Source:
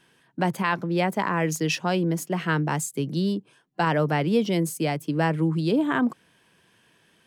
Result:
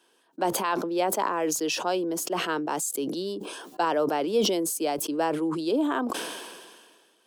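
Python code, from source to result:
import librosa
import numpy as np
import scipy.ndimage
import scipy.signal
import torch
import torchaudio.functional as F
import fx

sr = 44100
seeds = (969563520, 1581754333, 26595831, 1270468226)

y = scipy.signal.sosfilt(scipy.signal.butter(4, 310.0, 'highpass', fs=sr, output='sos'), x)
y = fx.peak_eq(y, sr, hz=2000.0, db=-11.5, octaves=0.73)
y = fx.sustainer(y, sr, db_per_s=34.0)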